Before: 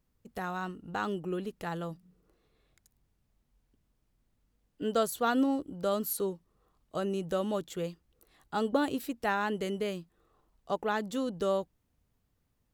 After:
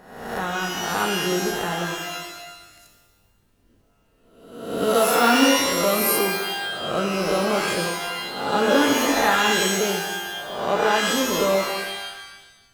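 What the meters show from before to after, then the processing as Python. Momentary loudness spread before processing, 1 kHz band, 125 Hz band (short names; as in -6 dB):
11 LU, +12.5 dB, +8.5 dB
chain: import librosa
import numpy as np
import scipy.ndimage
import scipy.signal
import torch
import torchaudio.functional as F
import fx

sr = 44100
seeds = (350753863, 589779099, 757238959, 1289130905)

y = fx.spec_swells(x, sr, rise_s=0.92)
y = fx.rev_shimmer(y, sr, seeds[0], rt60_s=1.1, semitones=12, shimmer_db=-2, drr_db=2.5)
y = F.gain(torch.from_numpy(y), 6.0).numpy()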